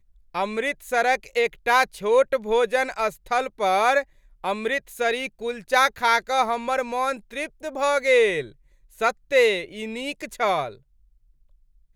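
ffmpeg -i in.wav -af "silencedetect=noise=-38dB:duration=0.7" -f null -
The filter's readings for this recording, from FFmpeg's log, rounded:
silence_start: 10.75
silence_end: 11.95 | silence_duration: 1.20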